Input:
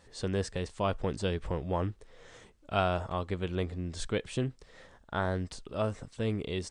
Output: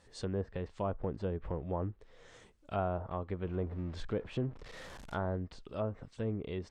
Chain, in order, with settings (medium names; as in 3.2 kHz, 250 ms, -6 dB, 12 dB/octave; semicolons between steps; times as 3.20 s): 3.45–5.36 s: jump at every zero crossing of -40.5 dBFS; low-pass that closes with the level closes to 1 kHz, closed at -27.5 dBFS; trim -4 dB